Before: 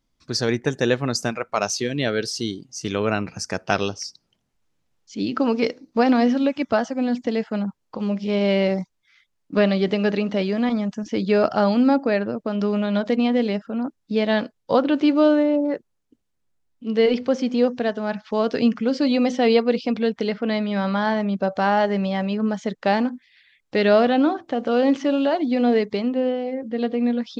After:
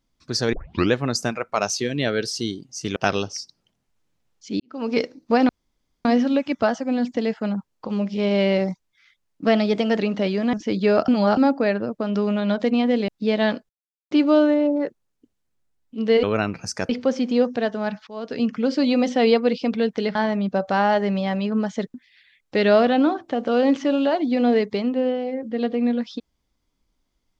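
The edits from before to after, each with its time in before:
0.53 s: tape start 0.40 s
2.96–3.62 s: move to 17.12 s
5.26–5.60 s: fade in quadratic
6.15 s: insert room tone 0.56 s
9.56–10.14 s: speed 109%
10.68–10.99 s: delete
11.54–11.83 s: reverse
13.54–13.97 s: delete
14.58–15.00 s: mute
18.30–18.89 s: fade in, from -20 dB
20.38–21.03 s: delete
22.82–23.14 s: delete

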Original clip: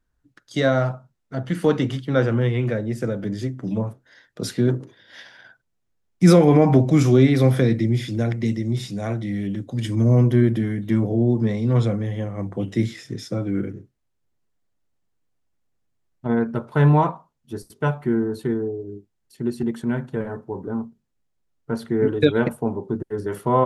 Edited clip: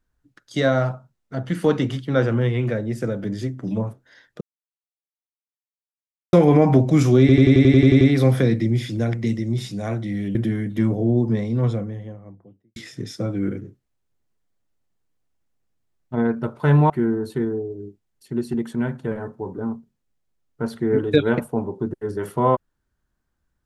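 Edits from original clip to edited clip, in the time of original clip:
4.41–6.33 s: mute
7.20 s: stutter 0.09 s, 10 plays
9.54–10.47 s: delete
11.27–12.88 s: studio fade out
17.02–17.99 s: delete

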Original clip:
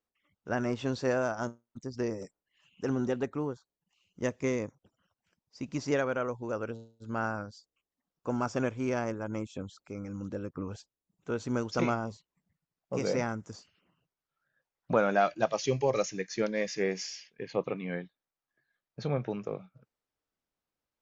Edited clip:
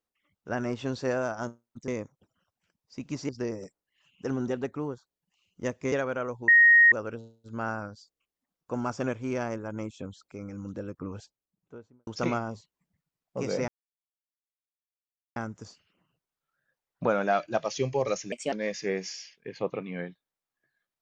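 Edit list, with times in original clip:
4.51–5.92 s: move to 1.88 s
6.48 s: add tone 1.87 kHz -13.5 dBFS 0.44 s
10.71–11.63 s: studio fade out
13.24 s: insert silence 1.68 s
16.20–16.46 s: speed 129%

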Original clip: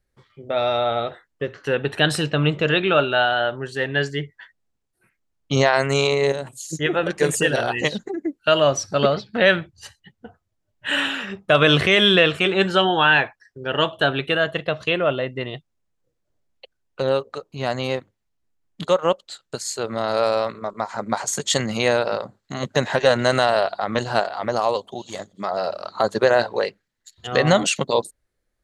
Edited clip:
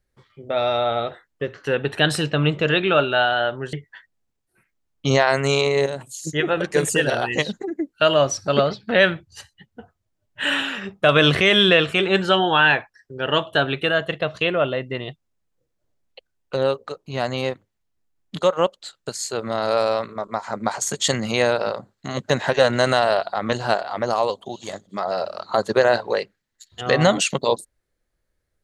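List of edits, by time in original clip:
3.73–4.19 s: delete

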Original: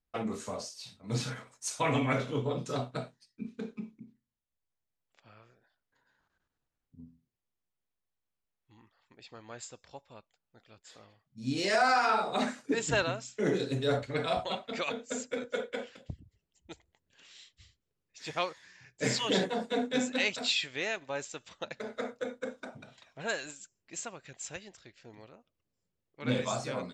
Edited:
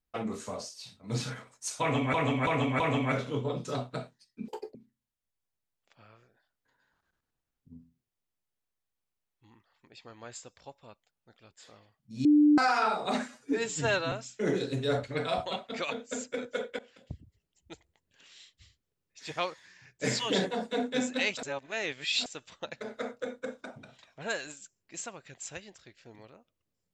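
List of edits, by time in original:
1.81–2.14 s: loop, 4 plays
3.49–4.02 s: speed 197%
11.52–11.85 s: bleep 297 Hz -17 dBFS
12.55–13.11 s: stretch 1.5×
15.78–16.13 s: fade in, from -20 dB
20.42–21.25 s: reverse

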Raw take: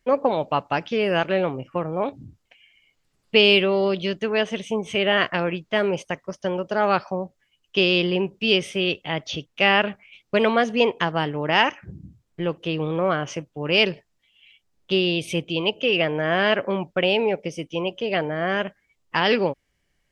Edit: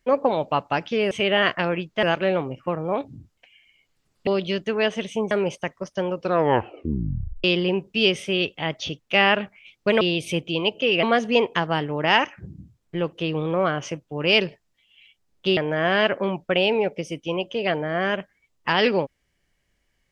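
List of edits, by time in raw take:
3.35–3.82 s: delete
4.86–5.78 s: move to 1.11 s
6.58 s: tape stop 1.33 s
15.02–16.04 s: move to 10.48 s

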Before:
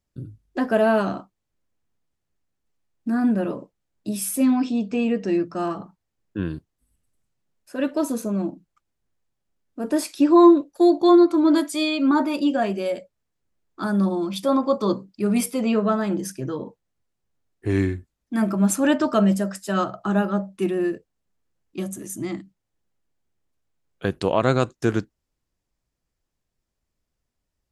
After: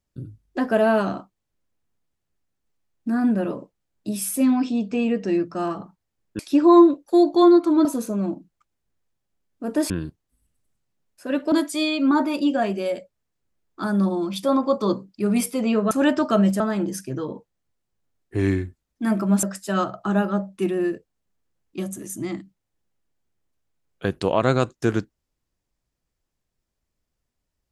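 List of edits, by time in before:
6.39–8.01 s: swap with 10.06–11.52 s
18.74–19.43 s: move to 15.91 s

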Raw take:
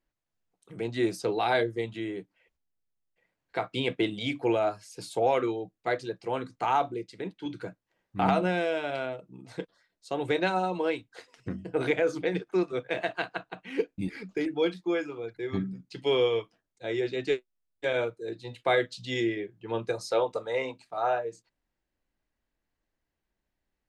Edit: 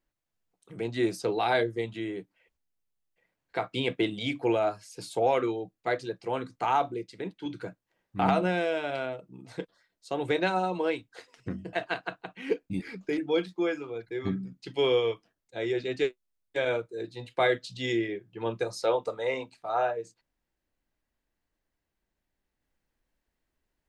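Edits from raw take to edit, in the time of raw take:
11.73–13.01 s: delete

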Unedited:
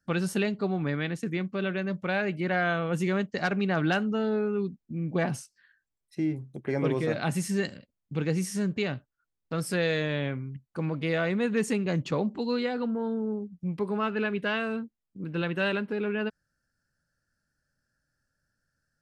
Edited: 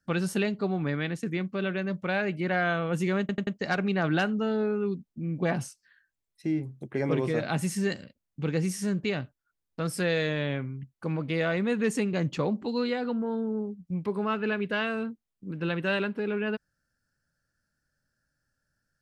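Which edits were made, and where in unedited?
3.20 s: stutter 0.09 s, 4 plays

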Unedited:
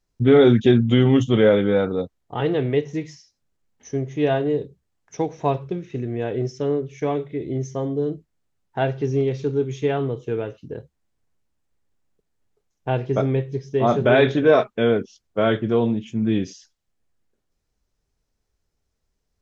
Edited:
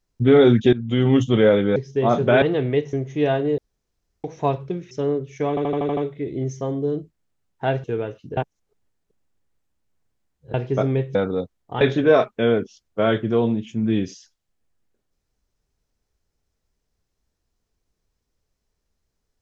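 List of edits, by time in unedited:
0.73–1.13 s: fade in, from -18 dB
1.76–2.42 s: swap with 13.54–14.20 s
2.93–3.94 s: delete
4.59–5.25 s: room tone
5.92–6.53 s: delete
7.11 s: stutter 0.08 s, 7 plays
8.98–10.23 s: delete
10.76–12.93 s: reverse

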